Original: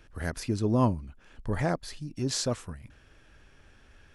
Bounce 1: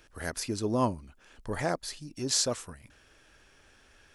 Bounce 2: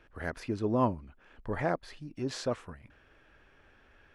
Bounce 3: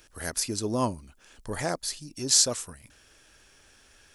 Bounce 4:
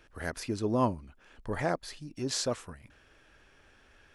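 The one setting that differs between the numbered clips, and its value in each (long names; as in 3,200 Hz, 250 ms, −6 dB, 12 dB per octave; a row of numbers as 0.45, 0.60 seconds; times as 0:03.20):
bass and treble, treble: +6, −15, +15, −2 decibels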